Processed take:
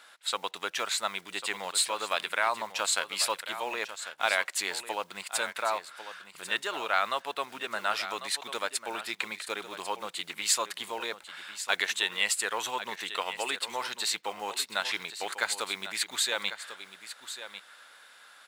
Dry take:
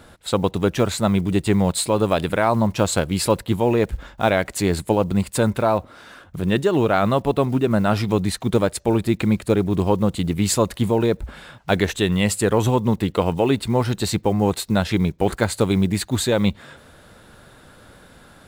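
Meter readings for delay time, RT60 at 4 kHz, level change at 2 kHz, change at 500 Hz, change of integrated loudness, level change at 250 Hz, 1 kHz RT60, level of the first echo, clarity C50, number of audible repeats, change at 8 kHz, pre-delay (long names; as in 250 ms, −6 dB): 1,096 ms, no reverb audible, −1.5 dB, −17.5 dB, −10.5 dB, −29.0 dB, no reverb audible, −12.0 dB, no reverb audible, 1, −3.0 dB, no reverb audible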